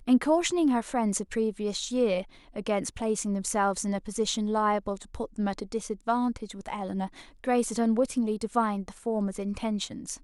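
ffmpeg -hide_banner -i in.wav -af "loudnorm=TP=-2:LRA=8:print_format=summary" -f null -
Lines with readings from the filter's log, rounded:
Input Integrated:    -28.9 LUFS
Input True Peak:     -11.6 dBTP
Input LRA:             2.9 LU
Input Threshold:     -39.0 LUFS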